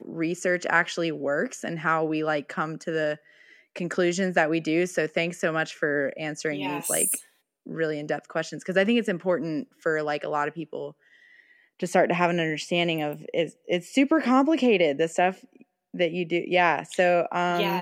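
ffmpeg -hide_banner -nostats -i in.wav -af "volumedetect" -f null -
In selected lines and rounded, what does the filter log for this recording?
mean_volume: -25.9 dB
max_volume: -6.5 dB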